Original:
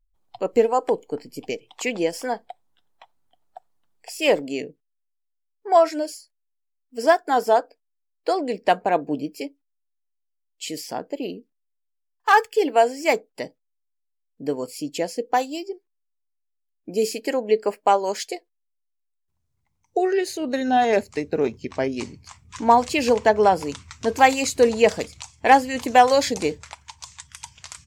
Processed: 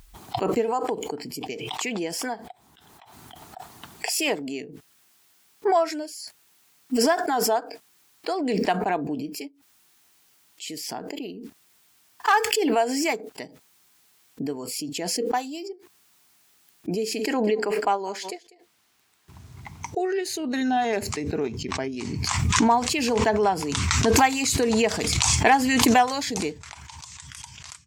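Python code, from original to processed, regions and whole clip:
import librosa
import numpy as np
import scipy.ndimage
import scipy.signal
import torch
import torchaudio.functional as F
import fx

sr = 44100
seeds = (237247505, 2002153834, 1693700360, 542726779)

y = fx.chain(x, sr, fx.high_shelf(hz=6600.0, db=-10.0),
    fx.echo_single(ms=196, db=-20.5), at=(16.94, 19.98))
y = scipy.signal.sosfilt(scipy.signal.butter(2, 82.0, 'highpass', fs=sr, output='sos'), y)
y = fx.peak_eq(y, sr, hz=540.0, db=-15.0, octaves=0.21)
y = fx.pre_swell(y, sr, db_per_s=23.0)
y = y * librosa.db_to_amplitude(-4.5)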